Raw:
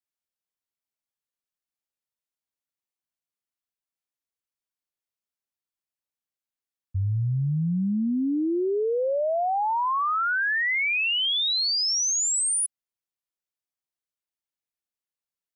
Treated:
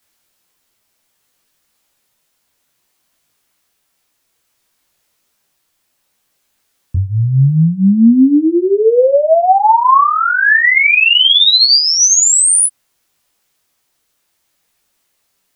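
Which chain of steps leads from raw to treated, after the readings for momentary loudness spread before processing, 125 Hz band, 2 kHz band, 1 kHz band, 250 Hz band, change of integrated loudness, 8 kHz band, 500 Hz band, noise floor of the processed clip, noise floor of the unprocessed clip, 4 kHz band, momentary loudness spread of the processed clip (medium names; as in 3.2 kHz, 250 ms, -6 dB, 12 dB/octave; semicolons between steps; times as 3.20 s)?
5 LU, +13.0 dB, +14.0 dB, +15.0 dB, +15.5 dB, +14.5 dB, +14.5 dB, +14.0 dB, -66 dBFS, under -85 dBFS, +15.0 dB, 7 LU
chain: loudness maximiser +33.5 dB; detune thickener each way 21 cents; trim -2 dB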